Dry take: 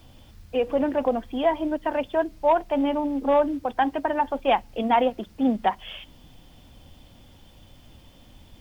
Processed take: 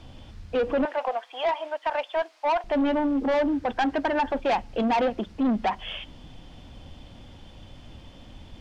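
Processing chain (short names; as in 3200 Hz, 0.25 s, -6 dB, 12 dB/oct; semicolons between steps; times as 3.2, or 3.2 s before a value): 0.85–2.64 HPF 670 Hz 24 dB/oct; 3.49–4.38 bell 1600 Hz +7 dB 0.41 oct; in parallel at -2 dB: limiter -16.5 dBFS, peak gain reduction 7.5 dB; on the sum: soft clip -19 dBFS, distortion -10 dB; air absorption 77 m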